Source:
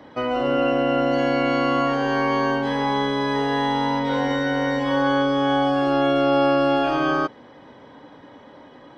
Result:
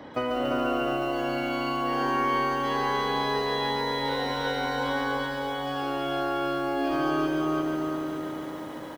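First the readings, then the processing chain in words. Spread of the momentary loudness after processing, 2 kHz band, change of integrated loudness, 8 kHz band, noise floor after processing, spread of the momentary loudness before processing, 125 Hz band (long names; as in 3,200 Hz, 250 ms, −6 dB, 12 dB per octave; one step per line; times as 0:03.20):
5 LU, −4.5 dB, −7.0 dB, can't be measured, −37 dBFS, 4 LU, −7.0 dB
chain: downward compressor 12 to 1, threshold −26 dBFS, peak gain reduction 12 dB
repeating echo 346 ms, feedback 42%, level −4 dB
feedback echo at a low word length 141 ms, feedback 80%, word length 9 bits, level −5 dB
level +1.5 dB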